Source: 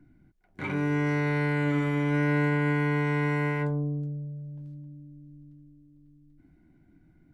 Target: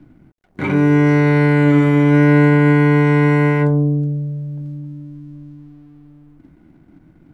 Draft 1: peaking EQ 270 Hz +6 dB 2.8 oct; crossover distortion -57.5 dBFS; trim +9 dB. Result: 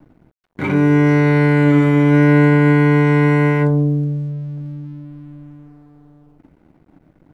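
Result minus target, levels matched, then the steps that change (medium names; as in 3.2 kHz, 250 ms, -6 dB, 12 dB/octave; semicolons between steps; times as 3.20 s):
crossover distortion: distortion +8 dB
change: crossover distortion -66.5 dBFS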